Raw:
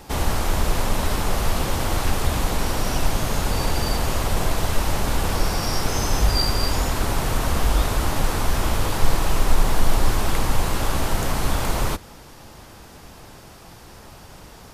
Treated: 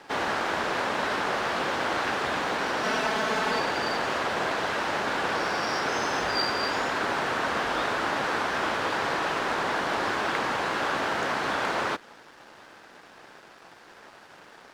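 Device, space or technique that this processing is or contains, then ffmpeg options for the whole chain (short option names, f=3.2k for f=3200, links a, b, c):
pocket radio on a weak battery: -filter_complex "[0:a]highpass=320,lowpass=3.9k,aeval=exprs='sgn(val(0))*max(abs(val(0))-0.00224,0)':c=same,equalizer=f=1.6k:t=o:w=0.57:g=6.5,asettb=1/sr,asplit=3[a][b][c];[a]atrim=end=2.834[d];[b]atrim=start=2.83:end=3.6,asetpts=PTS-STARTPTS,afade=t=in:d=0.004:c=qsin,afade=t=out:st=0.766:d=0.004:c=qsin,aecho=1:1:4.6:0.77,atrim=end_sample=33957[e];[c]atrim=start=3.596[f];[d][e]acrossfade=d=0.004:c1=hsin:c2=qsin[g];[g][f]acrossfade=d=0.004:c1=qsin:c2=hsin"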